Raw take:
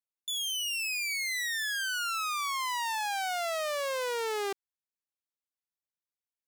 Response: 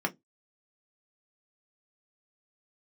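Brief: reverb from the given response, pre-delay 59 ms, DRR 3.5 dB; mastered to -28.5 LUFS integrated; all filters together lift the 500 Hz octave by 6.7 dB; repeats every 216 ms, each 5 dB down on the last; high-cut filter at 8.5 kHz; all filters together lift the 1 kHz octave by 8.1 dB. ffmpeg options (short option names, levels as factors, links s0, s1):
-filter_complex "[0:a]lowpass=8500,equalizer=f=500:t=o:g=5.5,equalizer=f=1000:t=o:g=8.5,aecho=1:1:216|432|648|864|1080|1296|1512:0.562|0.315|0.176|0.0988|0.0553|0.031|0.0173,asplit=2[s0][s1];[1:a]atrim=start_sample=2205,adelay=59[s2];[s1][s2]afir=irnorm=-1:irlink=0,volume=0.282[s3];[s0][s3]amix=inputs=2:normalize=0,volume=0.596"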